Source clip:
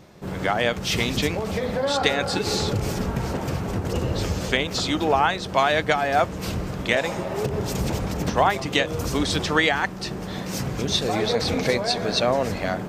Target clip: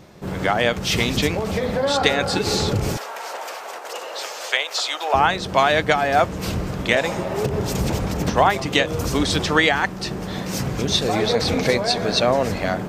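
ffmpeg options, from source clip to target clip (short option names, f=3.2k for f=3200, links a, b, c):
-filter_complex "[0:a]asettb=1/sr,asplit=3[a][b][c];[a]atrim=end=2.974[d];[b]atrim=start=2.97:end=5.14,asetpts=PTS-STARTPTS,afade=t=in:d=0.004:c=qsin,afade=t=out:st=2.166:d=0.004:c=qsin,highpass=f=600:w=0.5412,highpass=f=600:w=1.3066[e];[c]atrim=start=5.136[f];[d][e]acrossfade=d=0.004:c1=hsin:c2=qsin[g];[g][f]acrossfade=d=0.004:c1=qsin:c2=hsin,volume=3dB"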